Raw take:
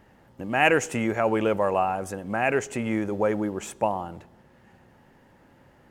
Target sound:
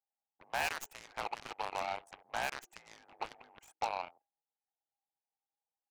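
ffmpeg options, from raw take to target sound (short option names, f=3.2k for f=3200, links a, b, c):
-filter_complex "[0:a]anlmdn=2.51,adynamicequalizer=threshold=0.00794:dfrequency=1800:dqfactor=2.9:tfrequency=1800:tqfactor=2.9:attack=5:release=100:ratio=0.375:range=1.5:mode=boostabove:tftype=bell,acrossover=split=2500[a][b];[a]acompressor=threshold=-30dB:ratio=16[c];[c][b]amix=inputs=2:normalize=0,afreqshift=-63,aeval=exprs='(tanh(17.8*val(0)+0.7)-tanh(0.7))/17.8':c=same,highpass=f=820:t=q:w=4.9,aeval=exprs='0.1*(cos(1*acos(clip(val(0)/0.1,-1,1)))-cos(1*PI/2))+0.02*(cos(7*acos(clip(val(0)/0.1,-1,1)))-cos(7*PI/2))':c=same,volume=-4.5dB"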